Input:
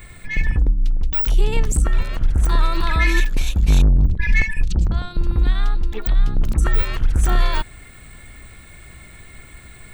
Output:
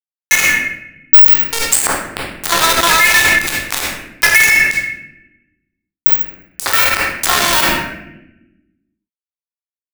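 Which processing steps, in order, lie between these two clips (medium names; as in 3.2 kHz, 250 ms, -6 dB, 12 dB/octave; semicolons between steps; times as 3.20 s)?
high-pass 790 Hz 24 dB/octave; bit crusher 4-bit; on a send at -5 dB: reverberation RT60 0.85 s, pre-delay 3 ms; on the sum: loudness maximiser +30.5 dB; trim -1 dB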